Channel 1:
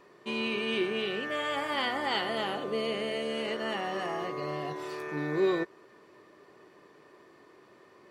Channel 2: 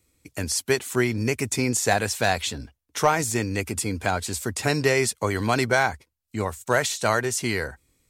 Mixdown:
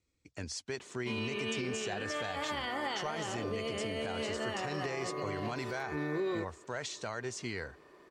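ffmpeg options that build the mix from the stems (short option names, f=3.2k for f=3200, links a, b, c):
-filter_complex "[0:a]alimiter=level_in=0.5dB:limit=-24dB:level=0:latency=1,volume=-0.5dB,adelay=800,volume=-2dB[a];[1:a]lowpass=f=6.8k:w=0.5412,lowpass=f=6.8k:w=1.3066,volume=-12dB[b];[a][b]amix=inputs=2:normalize=0,alimiter=level_in=2.5dB:limit=-24dB:level=0:latency=1:release=67,volume=-2.5dB"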